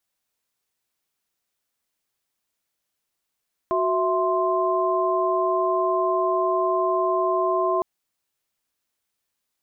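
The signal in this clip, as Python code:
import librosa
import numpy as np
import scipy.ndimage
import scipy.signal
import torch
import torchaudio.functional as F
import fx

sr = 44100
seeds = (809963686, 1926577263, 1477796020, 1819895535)

y = fx.chord(sr, length_s=4.11, notes=(66, 76, 84), wave='sine', level_db=-23.5)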